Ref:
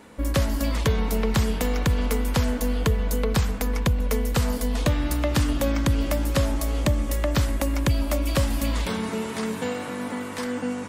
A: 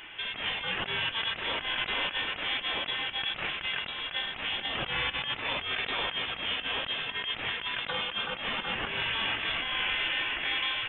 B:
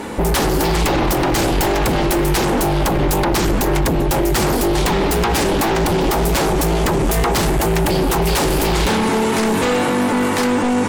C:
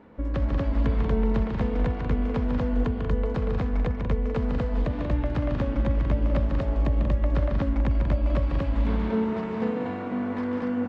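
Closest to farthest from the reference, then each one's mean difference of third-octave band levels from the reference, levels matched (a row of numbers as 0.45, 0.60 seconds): B, C, A; 5.0, 10.0, 14.5 decibels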